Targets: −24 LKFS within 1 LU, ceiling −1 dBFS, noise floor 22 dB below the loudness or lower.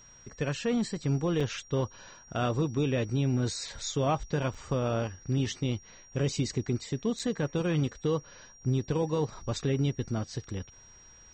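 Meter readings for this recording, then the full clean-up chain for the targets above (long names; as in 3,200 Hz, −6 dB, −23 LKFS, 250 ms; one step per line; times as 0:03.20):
number of dropouts 3; longest dropout 5.5 ms; interfering tone 5,700 Hz; level of the tone −53 dBFS; integrated loudness −31.0 LKFS; sample peak −17.5 dBFS; target loudness −24.0 LKFS
→ repair the gap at 0:01.40/0:04.54/0:07.19, 5.5 ms
notch filter 5,700 Hz, Q 30
level +7 dB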